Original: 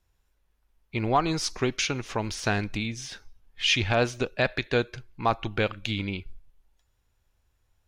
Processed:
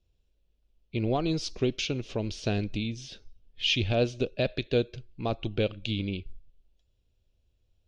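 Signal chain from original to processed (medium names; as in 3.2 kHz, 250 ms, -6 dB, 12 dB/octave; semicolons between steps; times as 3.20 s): low-pass 4.1 kHz 12 dB/octave; high-order bell 1.3 kHz -14.5 dB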